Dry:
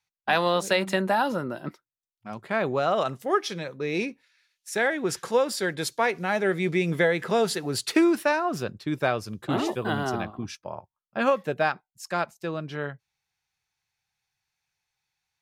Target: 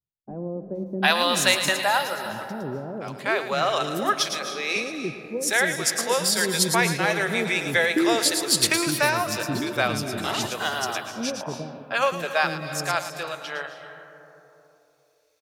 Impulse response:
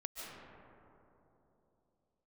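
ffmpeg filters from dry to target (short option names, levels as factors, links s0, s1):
-filter_complex "[0:a]highshelf=f=2200:g=11.5,acrossover=split=430[s0][s1];[s1]adelay=750[s2];[s0][s2]amix=inputs=2:normalize=0,asplit=2[s3][s4];[1:a]atrim=start_sample=2205,highshelf=f=3400:g=11,adelay=111[s5];[s4][s5]afir=irnorm=-1:irlink=0,volume=0.355[s6];[s3][s6]amix=inputs=2:normalize=0"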